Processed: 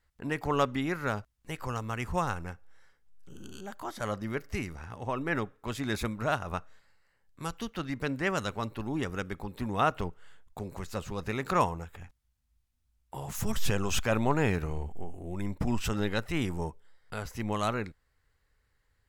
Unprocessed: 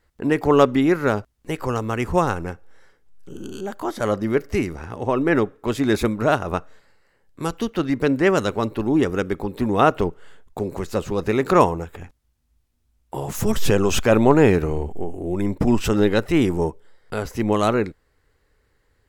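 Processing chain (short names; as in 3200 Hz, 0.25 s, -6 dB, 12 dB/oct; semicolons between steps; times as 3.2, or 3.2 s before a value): bell 370 Hz -9.5 dB 1.5 oct; gain -7 dB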